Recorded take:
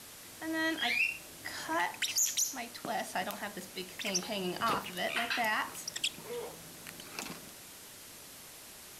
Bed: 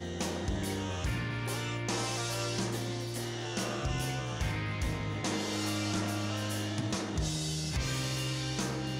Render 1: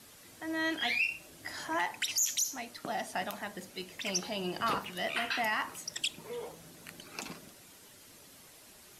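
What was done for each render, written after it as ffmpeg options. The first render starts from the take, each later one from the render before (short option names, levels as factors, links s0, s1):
-af "afftdn=nr=7:nf=-51"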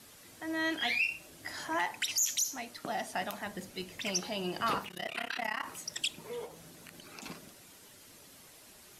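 -filter_complex "[0:a]asettb=1/sr,asplit=3[s0][s1][s2];[s0]atrim=end=3.464[s3];[s1]atrim=start=3.46:end=4.09,asetpts=PTS-STARTPTS,afade=t=in:d=0.004:c=qsin,afade=t=out:st=0.626:d=0.004:c=qsin,lowshelf=f=160:g=8[s4];[s2]atrim=start=4.086[s5];[s3][s4]acrossfade=d=0.004:c1=hsin:c2=qsin[s6];[s6][s5]acrossfade=d=0.004:c1=qsin:c2=hsin,asplit=3[s7][s8][s9];[s7]afade=t=out:st=4.86:d=0.02[s10];[s8]tremolo=f=33:d=0.947,afade=t=in:st=4.86:d=0.02,afade=t=out:st=5.64:d=0.02[s11];[s9]afade=t=in:st=5.64:d=0.02[s12];[s10][s11][s12]amix=inputs=3:normalize=0,asplit=3[s13][s14][s15];[s13]afade=t=out:st=6.45:d=0.02[s16];[s14]acompressor=threshold=0.00501:ratio=2.5:attack=3.2:release=140:knee=1:detection=peak,afade=t=in:st=6.45:d=0.02,afade=t=out:st=7.22:d=0.02[s17];[s15]afade=t=in:st=7.22:d=0.02[s18];[s16][s17][s18]amix=inputs=3:normalize=0"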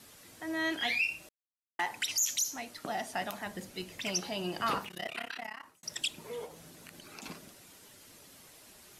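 -filter_complex "[0:a]asplit=4[s0][s1][s2][s3];[s0]atrim=end=1.29,asetpts=PTS-STARTPTS,afade=t=out:st=1.286:d=0.004:c=hsin[s4];[s1]atrim=start=1.29:end=1.79,asetpts=PTS-STARTPTS,volume=0[s5];[s2]atrim=start=1.79:end=5.83,asetpts=PTS-STARTPTS,afade=t=in:d=0.004:c=hsin,afade=t=out:st=3.25:d=0.79[s6];[s3]atrim=start=5.83,asetpts=PTS-STARTPTS,afade=t=in:d=0.004:c=hsin[s7];[s4][s5][s6][s7]concat=n=4:v=0:a=1"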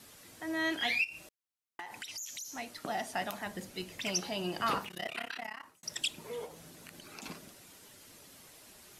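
-filter_complex "[0:a]asplit=3[s0][s1][s2];[s0]afade=t=out:st=1.03:d=0.02[s3];[s1]acompressor=threshold=0.01:ratio=6:attack=3.2:release=140:knee=1:detection=peak,afade=t=in:st=1.03:d=0.02,afade=t=out:st=2.55:d=0.02[s4];[s2]afade=t=in:st=2.55:d=0.02[s5];[s3][s4][s5]amix=inputs=3:normalize=0"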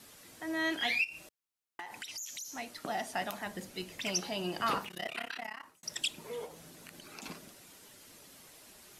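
-af "equalizer=f=92:w=1.5:g=-3.5"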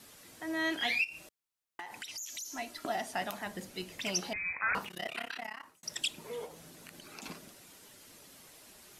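-filter_complex "[0:a]asettb=1/sr,asplit=3[s0][s1][s2];[s0]atrim=end=2.294[s3];[s1]atrim=start=2.29:end=2.96,asetpts=PTS-STARTPTS,afade=t=in:d=0.004:c=qsin,afade=t=out:st=0.666:d=0.004:c=qsin,aecho=1:1:3:0.57,atrim=end_sample=29547[s4];[s2]atrim=start=2.956[s5];[s3][s4]acrossfade=d=0.004:c1=hsin:c2=qsin[s6];[s6][s5]acrossfade=d=0.004:c1=qsin:c2=hsin,asettb=1/sr,asplit=3[s7][s8][s9];[s7]atrim=end=4.334[s10];[s8]atrim=start=4.33:end=4.75,asetpts=PTS-STARTPTS,afade=t=in:d=0.004:c=qsin,afade=t=out:st=0.416:d=0.004:c=qsin,lowpass=f=2300:t=q:w=0.5098,lowpass=f=2300:t=q:w=0.6013,lowpass=f=2300:t=q:w=0.9,lowpass=f=2300:t=q:w=2.563,afreqshift=-2700[s11];[s9]atrim=start=4.746[s12];[s10][s11]acrossfade=d=0.004:c1=hsin:c2=qsin[s13];[s13][s12]acrossfade=d=0.004:c1=qsin:c2=hsin"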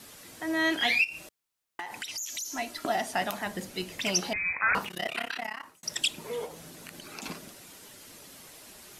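-af "volume=2"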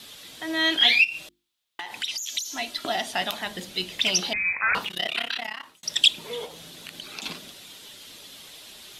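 -af "equalizer=f=3500:w=1.7:g=13.5,bandreject=f=50:t=h:w=6,bandreject=f=100:t=h:w=6,bandreject=f=150:t=h:w=6,bandreject=f=200:t=h:w=6,bandreject=f=250:t=h:w=6,bandreject=f=300:t=h:w=6,bandreject=f=350:t=h:w=6"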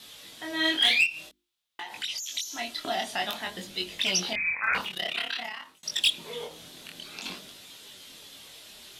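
-af "volume=4.47,asoftclip=hard,volume=0.224,flanger=delay=19.5:depth=7:speed=0.52"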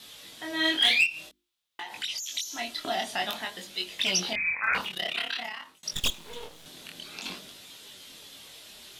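-filter_complex "[0:a]asettb=1/sr,asplit=3[s0][s1][s2];[s0]atrim=end=3.454[s3];[s1]atrim=start=3.45:end=3.99,asetpts=PTS-STARTPTS,afade=t=in:d=0.004:c=qsin,afade=t=out:st=0.536:d=0.004:c=qsin,lowshelf=f=310:g=-11[s4];[s2]atrim=start=3.986[s5];[s3][s4]acrossfade=d=0.004:c1=hsin:c2=qsin[s6];[s6][s5]acrossfade=d=0.004:c1=qsin:c2=hsin,asettb=1/sr,asplit=3[s7][s8][s9];[s7]atrim=end=5.934[s10];[s8]atrim=start=5.93:end=6.66,asetpts=PTS-STARTPTS,afade=t=in:d=0.004:c=qsin,afade=t=out:st=0.726:d=0.004:c=qsin,aeval=exprs='max(val(0),0)':c=same[s11];[s9]atrim=start=6.656[s12];[s10][s11]acrossfade=d=0.004:c1=hsin:c2=qsin[s13];[s13][s12]acrossfade=d=0.004:c1=qsin:c2=hsin"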